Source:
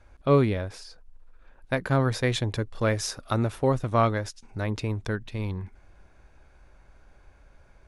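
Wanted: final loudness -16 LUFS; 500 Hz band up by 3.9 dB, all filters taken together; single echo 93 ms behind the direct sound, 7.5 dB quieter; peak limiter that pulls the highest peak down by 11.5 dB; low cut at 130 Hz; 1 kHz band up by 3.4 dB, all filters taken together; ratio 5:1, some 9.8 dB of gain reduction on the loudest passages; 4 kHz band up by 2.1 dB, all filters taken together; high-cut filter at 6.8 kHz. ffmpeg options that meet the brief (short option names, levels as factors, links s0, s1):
-af "highpass=130,lowpass=6800,equalizer=f=500:t=o:g=4,equalizer=f=1000:t=o:g=3,equalizer=f=4000:t=o:g=3,acompressor=threshold=0.0708:ratio=5,alimiter=limit=0.0944:level=0:latency=1,aecho=1:1:93:0.422,volume=7.5"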